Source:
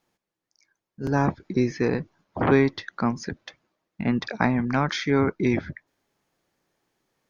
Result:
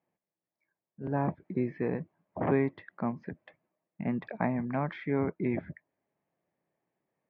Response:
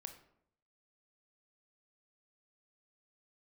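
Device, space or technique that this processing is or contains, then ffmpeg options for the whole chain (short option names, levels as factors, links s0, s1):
bass cabinet: -af "highpass=86,equalizer=f=170:t=q:w=4:g=5,equalizer=f=630:t=q:w=4:g=6,equalizer=f=1400:t=q:w=4:g=-8,lowpass=f=2300:w=0.5412,lowpass=f=2300:w=1.3066,volume=0.376"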